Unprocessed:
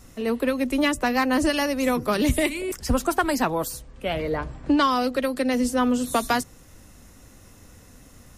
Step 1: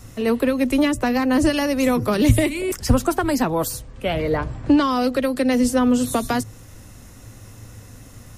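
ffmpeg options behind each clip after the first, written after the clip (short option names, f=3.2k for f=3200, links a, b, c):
-filter_complex "[0:a]equalizer=f=110:w=6.3:g=14.5,acrossover=split=500[a][b];[b]alimiter=limit=-20dB:level=0:latency=1:release=197[c];[a][c]amix=inputs=2:normalize=0,volume=5dB"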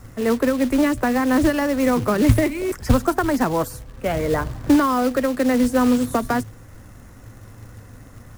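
-af "highshelf=f=2.3k:t=q:w=1.5:g=-8,acrusher=bits=4:mode=log:mix=0:aa=0.000001"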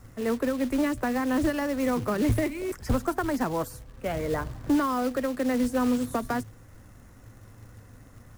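-af "asoftclip=type=hard:threshold=-10dB,volume=-7.5dB"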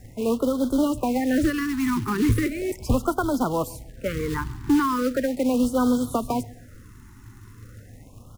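-af "aecho=1:1:135|270|405:0.075|0.033|0.0145,afftfilt=real='re*(1-between(b*sr/1024,550*pow(2200/550,0.5+0.5*sin(2*PI*0.38*pts/sr))/1.41,550*pow(2200/550,0.5+0.5*sin(2*PI*0.38*pts/sr))*1.41))':imag='im*(1-between(b*sr/1024,550*pow(2200/550,0.5+0.5*sin(2*PI*0.38*pts/sr))/1.41,550*pow(2200/550,0.5+0.5*sin(2*PI*0.38*pts/sr))*1.41))':win_size=1024:overlap=0.75,volume=4dB"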